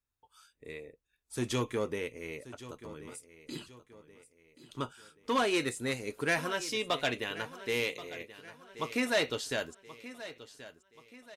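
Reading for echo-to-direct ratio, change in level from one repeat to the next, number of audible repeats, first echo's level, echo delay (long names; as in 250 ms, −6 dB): −14.5 dB, −7.5 dB, 3, −15.5 dB, 1,080 ms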